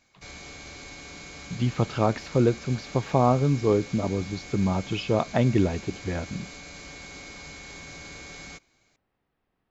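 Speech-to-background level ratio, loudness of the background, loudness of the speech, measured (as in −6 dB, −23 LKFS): 15.5 dB, −41.0 LKFS, −25.5 LKFS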